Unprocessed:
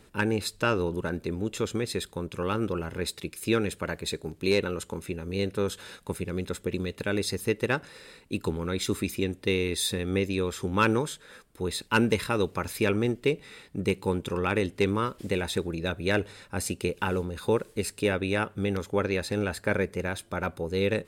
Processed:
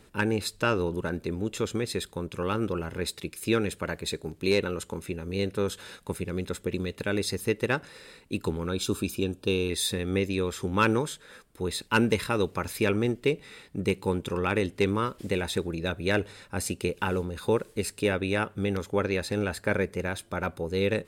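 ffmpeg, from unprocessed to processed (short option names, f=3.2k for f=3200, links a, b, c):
-filter_complex "[0:a]asettb=1/sr,asplit=3[a][b][c];[a]atrim=end=8.694[d];[b]atrim=start=8.69:end=9.7,asetpts=PTS-STARTPTS,afade=t=in:d=0.004:c=qsin,afade=t=out:st=1.006:d=0.004:c=qsin,asuperstop=centerf=2000:order=4:qfactor=2.9[e];[c]atrim=start=9.696[f];[d][e]acrossfade=d=0.004:c1=hsin:c2=qsin[g];[g][f]acrossfade=d=0.004:c1=qsin:c2=hsin"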